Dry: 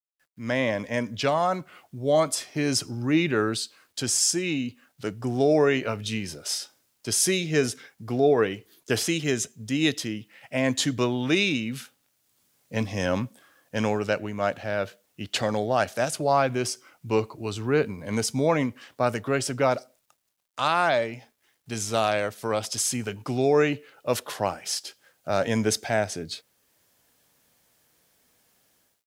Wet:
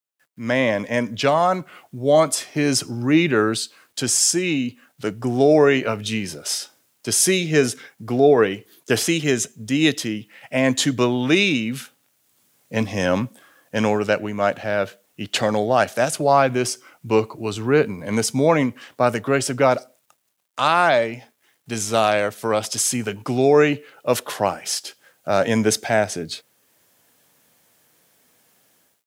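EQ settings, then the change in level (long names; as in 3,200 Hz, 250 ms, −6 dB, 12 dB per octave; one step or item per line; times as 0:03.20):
high-pass filter 110 Hz
parametric band 4,800 Hz −2.5 dB
+6.0 dB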